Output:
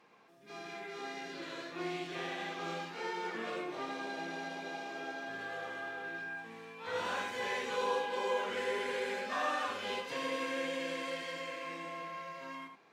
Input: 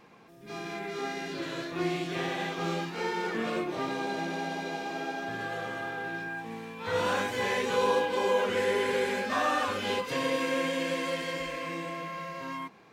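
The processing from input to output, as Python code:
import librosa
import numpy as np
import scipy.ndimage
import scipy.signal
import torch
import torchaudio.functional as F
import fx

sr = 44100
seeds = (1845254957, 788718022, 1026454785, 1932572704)

y = fx.highpass(x, sr, hz=420.0, slope=6)
y = fx.high_shelf(y, sr, hz=11000.0, db=-10.0)
y = y + 10.0 ** (-8.0 / 20.0) * np.pad(y, (int(78 * sr / 1000.0), 0))[:len(y)]
y = y * 10.0 ** (-6.0 / 20.0)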